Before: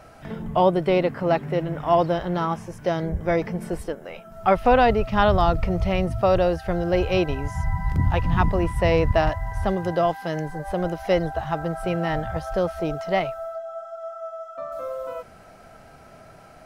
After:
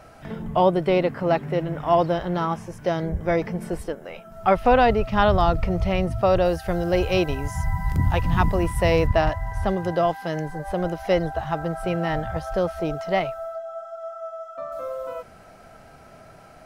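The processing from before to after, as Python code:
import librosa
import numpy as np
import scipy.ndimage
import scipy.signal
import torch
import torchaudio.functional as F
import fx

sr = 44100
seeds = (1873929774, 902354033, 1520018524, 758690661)

y = fx.high_shelf(x, sr, hz=6800.0, db=11.5, at=(6.45, 9.07))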